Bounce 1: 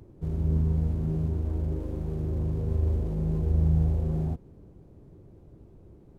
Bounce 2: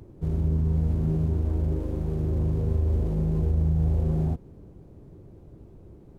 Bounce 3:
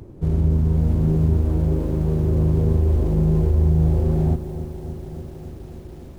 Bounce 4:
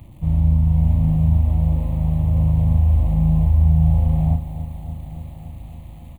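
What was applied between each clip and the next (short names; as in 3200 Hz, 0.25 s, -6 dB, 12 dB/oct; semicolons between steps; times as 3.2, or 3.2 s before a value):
limiter -20 dBFS, peak gain reduction 6 dB; gain +3.5 dB
lo-fi delay 0.286 s, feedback 80%, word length 9-bit, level -12 dB; gain +6.5 dB
crackle 400/s -45 dBFS; fixed phaser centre 1500 Hz, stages 6; doubler 37 ms -5 dB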